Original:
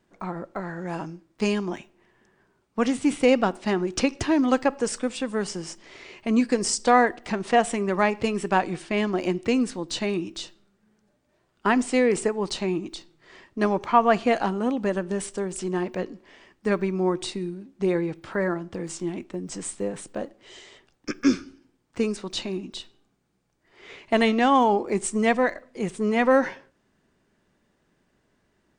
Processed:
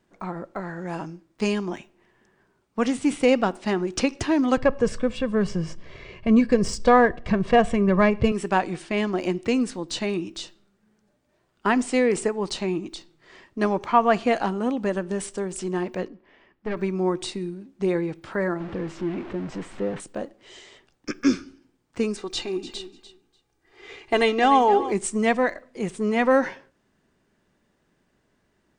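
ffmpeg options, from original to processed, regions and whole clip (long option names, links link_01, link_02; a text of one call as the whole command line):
ffmpeg -i in.wav -filter_complex "[0:a]asettb=1/sr,asplit=3[link_01][link_02][link_03];[link_01]atrim=end=4.574[link_04];[link_02]atrim=start=4.57:end=8.32,asetpts=PTS-STARTPTS,afade=type=in:duration=0.004:curve=qsin,afade=type=out:start_time=3.746:duration=0.004:curve=qsin,bass=frequency=250:gain=15,treble=frequency=4000:gain=-5,adynamicsmooth=sensitivity=1.5:basefreq=6700,aecho=1:1:1.8:0.52,atrim=end_sample=165375[link_05];[link_03]atrim=start=8.316[link_06];[link_04][link_05]acrossfade=duration=0.004:curve1=hsin:curve2=qsin[link_07];[link_07][link_06]acrossfade=duration=0.004:curve1=qsin:curve2=hsin,asettb=1/sr,asplit=3[link_08][link_09][link_10];[link_08]atrim=end=16.084[link_11];[link_09]atrim=start=16.08:end=16.77,asetpts=PTS-STARTPTS,afade=type=in:duration=0.004:curve=qsin,afade=type=out:start_time=0.686:duration=0.004:curve=qsin,lowpass=2800,aeval=exprs='(tanh(8.91*val(0)+0.7)-tanh(0.7))/8.91':channel_layout=same[link_12];[link_10]atrim=start=16.766[link_13];[link_11][link_12]acrossfade=duration=0.004:curve1=hsin:curve2=qsin[link_14];[link_14][link_13]acrossfade=duration=0.004:curve1=qsin:curve2=hsin,asettb=1/sr,asplit=3[link_15][link_16][link_17];[link_15]atrim=end=18.604[link_18];[link_16]atrim=start=18.6:end=20,asetpts=PTS-STARTPTS,afade=type=in:duration=0.004:curve=qsin,afade=type=out:start_time=1.396:duration=0.004:curve=qsin,aeval=exprs='val(0)+0.5*0.0237*sgn(val(0))':channel_layout=same,lowpass=2400[link_19];[link_17]atrim=start=19.996[link_20];[link_18][link_19]acrossfade=duration=0.004:curve1=hsin:curve2=qsin[link_21];[link_21][link_20]acrossfade=duration=0.004:curve1=qsin:curve2=hsin,asettb=1/sr,asplit=3[link_22][link_23][link_24];[link_22]atrim=end=22.184[link_25];[link_23]atrim=start=22.18:end=24.92,asetpts=PTS-STARTPTS,afade=type=in:duration=0.004:curve=qsin,afade=type=out:start_time=2.736:duration=0.004:curve=qsin,aecho=1:1:2.5:0.59,atrim=end_sample=120834,aecho=1:1:295|590:0.211|0.0338,atrim=end_sample=120834[link_26];[link_24]atrim=start=24.916[link_27];[link_25][link_26]acrossfade=duration=0.004:curve1=hsin:curve2=qsin[link_28];[link_28][link_27]acrossfade=duration=0.004:curve1=qsin:curve2=hsin" out.wav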